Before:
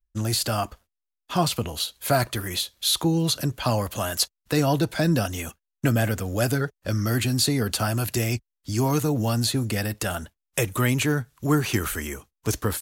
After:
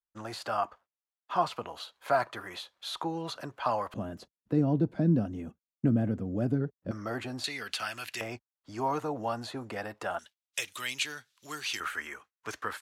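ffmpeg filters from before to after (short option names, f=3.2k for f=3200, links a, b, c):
-af "asetnsamples=n=441:p=0,asendcmd='3.94 bandpass f 230;6.91 bandpass f 780;7.44 bandpass f 2400;8.21 bandpass f 890;10.19 bandpass f 3800;11.8 bandpass f 1500',bandpass=f=1k:t=q:w=1.4:csg=0"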